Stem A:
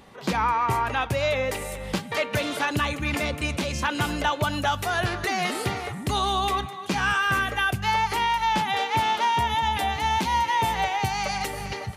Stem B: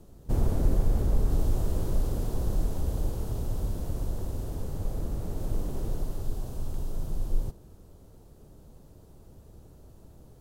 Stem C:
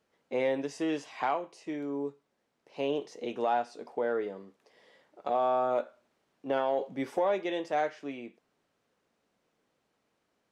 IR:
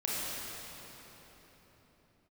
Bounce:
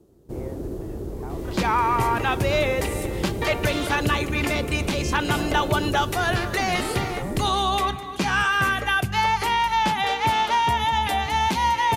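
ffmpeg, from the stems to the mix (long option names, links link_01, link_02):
-filter_complex "[0:a]aeval=exprs='val(0)+0.00355*(sin(2*PI*60*n/s)+sin(2*PI*2*60*n/s)/2+sin(2*PI*3*60*n/s)/3+sin(2*PI*4*60*n/s)/4+sin(2*PI*5*60*n/s)/5)':channel_layout=same,adelay=1300,volume=2dB[link_01];[1:a]highpass=57,equalizer=frequency=360:width_type=o:width=0.75:gain=12,dynaudnorm=framelen=580:gausssize=7:maxgain=9dB,volume=-6.5dB[link_02];[2:a]lowpass=1500,volume=-11dB[link_03];[link_01][link_02][link_03]amix=inputs=3:normalize=0"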